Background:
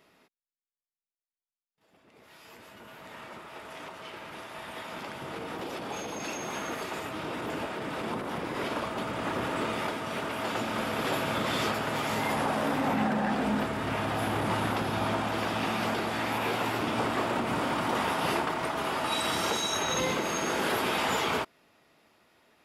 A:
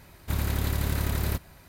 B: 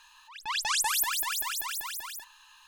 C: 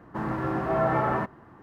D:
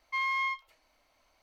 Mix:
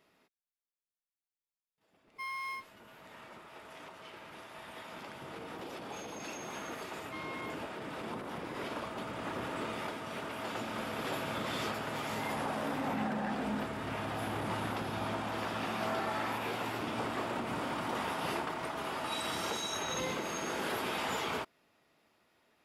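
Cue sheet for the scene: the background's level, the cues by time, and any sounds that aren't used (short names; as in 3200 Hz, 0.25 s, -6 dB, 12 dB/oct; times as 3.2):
background -7 dB
2.06 add D -7.5 dB + decimation joined by straight lines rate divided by 6×
6.99 add D -15.5 dB
15.12 add C -9.5 dB + Bessel high-pass 760 Hz
not used: A, B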